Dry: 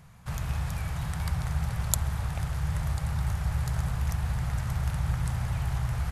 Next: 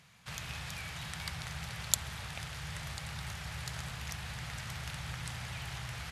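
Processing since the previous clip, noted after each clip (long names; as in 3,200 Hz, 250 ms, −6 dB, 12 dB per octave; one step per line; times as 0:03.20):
meter weighting curve D
level −7 dB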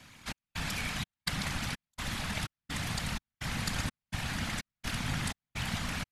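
gate pattern "xxxx...xx" 189 BPM −60 dB
random phases in short frames
level +7 dB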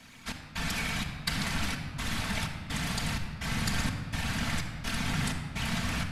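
rectangular room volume 3,200 cubic metres, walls mixed, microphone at 1.6 metres
level +1 dB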